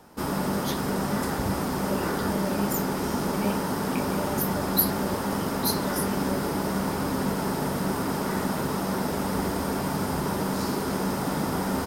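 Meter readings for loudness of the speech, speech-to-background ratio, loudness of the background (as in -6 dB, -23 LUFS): -32.5 LUFS, -4.5 dB, -28.0 LUFS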